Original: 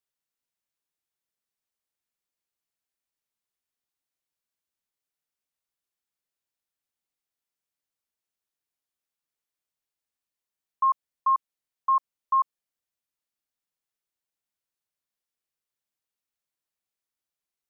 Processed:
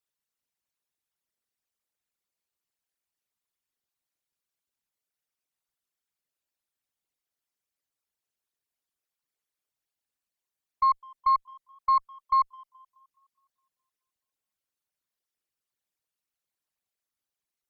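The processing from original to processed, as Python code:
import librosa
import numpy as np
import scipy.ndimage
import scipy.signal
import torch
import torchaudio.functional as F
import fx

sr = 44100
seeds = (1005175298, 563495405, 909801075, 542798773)

y = fx.envelope_sharpen(x, sr, power=2.0)
y = fx.echo_tape(y, sr, ms=210, feedback_pct=71, wet_db=-19.5, lp_hz=1000.0, drive_db=20.0, wow_cents=35)
y = fx.cheby_harmonics(y, sr, harmonics=(4,), levels_db=(-27,), full_scale_db=-16.5)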